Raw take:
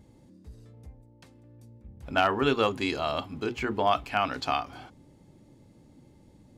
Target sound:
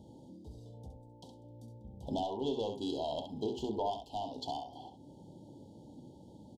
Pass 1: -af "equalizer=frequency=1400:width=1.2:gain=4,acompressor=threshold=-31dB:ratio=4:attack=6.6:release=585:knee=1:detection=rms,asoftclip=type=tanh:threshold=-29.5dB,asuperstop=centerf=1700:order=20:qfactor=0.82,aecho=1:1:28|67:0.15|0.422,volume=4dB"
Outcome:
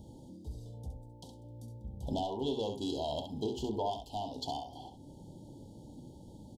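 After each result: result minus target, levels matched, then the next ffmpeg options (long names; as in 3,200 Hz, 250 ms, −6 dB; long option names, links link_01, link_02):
8,000 Hz band +5.0 dB; 125 Hz band +5.0 dB
-af "equalizer=frequency=1400:width=1.2:gain=4,acompressor=threshold=-31dB:ratio=4:attack=6.6:release=585:knee=1:detection=rms,highshelf=frequency=5800:gain=-10.5,asoftclip=type=tanh:threshold=-29.5dB,asuperstop=centerf=1700:order=20:qfactor=0.82,aecho=1:1:28|67:0.15|0.422,volume=4dB"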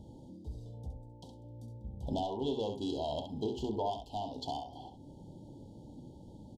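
125 Hz band +5.0 dB
-af "highpass=frequency=160:poles=1,equalizer=frequency=1400:width=1.2:gain=4,acompressor=threshold=-31dB:ratio=4:attack=6.6:release=585:knee=1:detection=rms,highshelf=frequency=5800:gain=-10.5,asoftclip=type=tanh:threshold=-29.5dB,asuperstop=centerf=1700:order=20:qfactor=0.82,aecho=1:1:28|67:0.15|0.422,volume=4dB"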